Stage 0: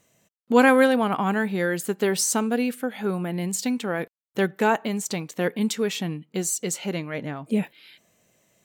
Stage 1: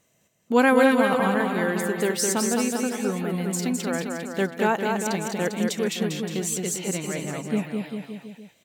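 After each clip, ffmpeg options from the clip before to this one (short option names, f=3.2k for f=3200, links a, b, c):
-af "aecho=1:1:210|399|569.1|722.2|860:0.631|0.398|0.251|0.158|0.1,volume=-2dB"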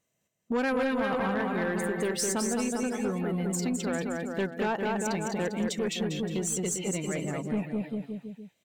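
-af "afftdn=nr=12:nf=-37,acompressor=threshold=-25dB:ratio=2,aeval=exprs='(tanh(12.6*val(0)+0.1)-tanh(0.1))/12.6':c=same"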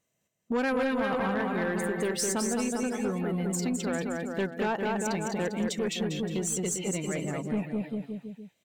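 -af anull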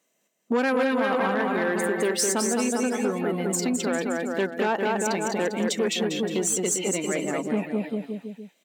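-filter_complex "[0:a]highpass=f=220:w=0.5412,highpass=f=220:w=1.3066,asplit=2[a][b];[b]alimiter=limit=-23.5dB:level=0:latency=1:release=252,volume=0.5dB[c];[a][c]amix=inputs=2:normalize=0,volume=1dB"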